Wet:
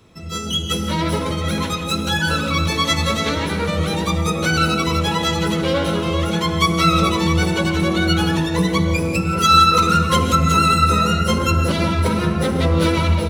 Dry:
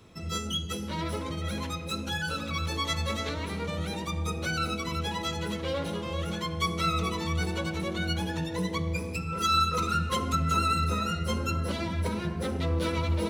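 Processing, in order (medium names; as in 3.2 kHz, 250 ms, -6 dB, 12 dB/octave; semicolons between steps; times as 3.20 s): level rider gain up to 8.5 dB; echo from a far wall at 220 m, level -10 dB; reverberation, pre-delay 3 ms, DRR 7.5 dB; trim +3 dB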